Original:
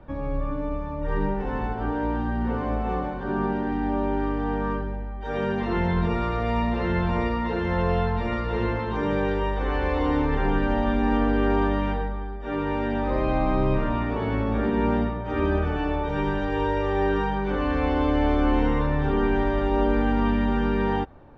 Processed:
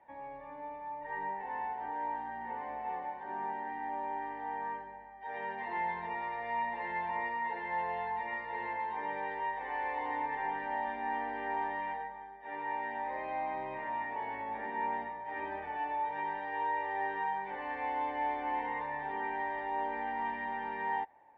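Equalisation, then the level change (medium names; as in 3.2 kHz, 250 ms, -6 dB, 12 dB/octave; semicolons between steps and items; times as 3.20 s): two resonant band-passes 1.3 kHz, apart 1.1 oct; 0.0 dB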